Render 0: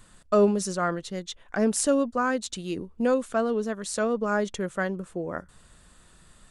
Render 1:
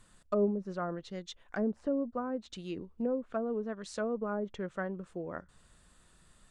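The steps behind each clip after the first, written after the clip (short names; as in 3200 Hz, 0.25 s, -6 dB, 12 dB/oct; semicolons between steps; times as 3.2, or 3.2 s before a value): treble ducked by the level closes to 560 Hz, closed at -20 dBFS; gain -7.5 dB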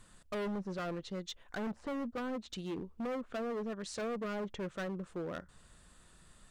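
hard clip -37 dBFS, distortion -5 dB; gain +2 dB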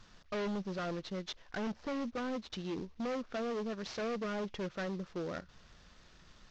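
CVSD 32 kbps; gain +1 dB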